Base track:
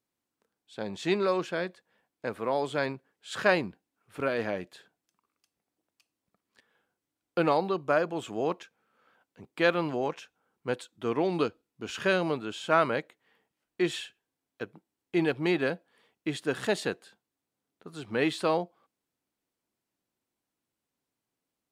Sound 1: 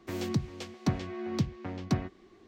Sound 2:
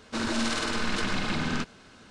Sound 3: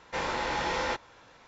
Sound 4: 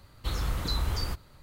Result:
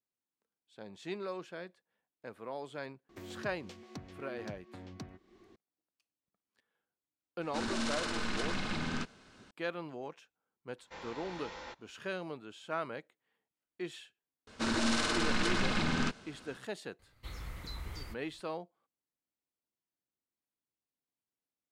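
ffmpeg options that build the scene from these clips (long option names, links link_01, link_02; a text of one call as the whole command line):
ffmpeg -i bed.wav -i cue0.wav -i cue1.wav -i cue2.wav -i cue3.wav -filter_complex "[2:a]asplit=2[link_01][link_02];[0:a]volume=-13dB[link_03];[1:a]acompressor=threshold=-42dB:ratio=3:attack=5.4:release=240:knee=1:detection=rms[link_04];[3:a]equalizer=frequency=3800:width_type=o:width=0.77:gain=2.5[link_05];[4:a]equalizer=frequency=2100:width_type=o:width=0.37:gain=9.5[link_06];[link_04]atrim=end=2.47,asetpts=PTS-STARTPTS,volume=-3.5dB,afade=type=in:duration=0.004:curve=hsin,afade=type=out:start_time=2.466:duration=0.004:curve=hsin,adelay=136269S[link_07];[link_01]atrim=end=2.1,asetpts=PTS-STARTPTS,volume=-7dB,afade=type=in:duration=0.004:curve=hsin,afade=type=out:start_time=2.096:duration=0.004:curve=hsin,adelay=7410[link_08];[link_05]atrim=end=1.47,asetpts=PTS-STARTPTS,volume=-16.5dB,afade=type=in:duration=0.004:curve=hsin,afade=type=out:start_time=1.466:duration=0.004:curve=hsin,adelay=10780[link_09];[link_02]atrim=end=2.1,asetpts=PTS-STARTPTS,volume=-2.5dB,afade=type=in:duration=0.004:curve=hsin,afade=type=out:start_time=2.096:duration=0.004:curve=hsin,adelay=14470[link_10];[link_06]atrim=end=1.42,asetpts=PTS-STARTPTS,volume=-14dB,afade=type=in:duration=0.004:curve=hsin,afade=type=out:start_time=1.416:duration=0.004:curve=hsin,adelay=16990[link_11];[link_03][link_07][link_08][link_09][link_10][link_11]amix=inputs=6:normalize=0" out.wav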